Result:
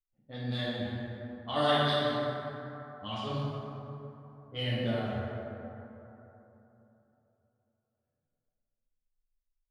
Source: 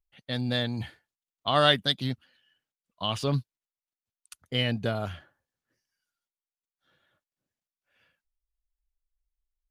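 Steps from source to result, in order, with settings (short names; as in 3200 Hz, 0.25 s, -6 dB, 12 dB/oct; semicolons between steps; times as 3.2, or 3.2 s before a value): low-pass opened by the level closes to 340 Hz, open at -23 dBFS; chorus voices 4, 0.83 Hz, delay 11 ms, depth 2.8 ms; plate-style reverb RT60 3.3 s, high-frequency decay 0.4×, DRR -7.5 dB; gain -9 dB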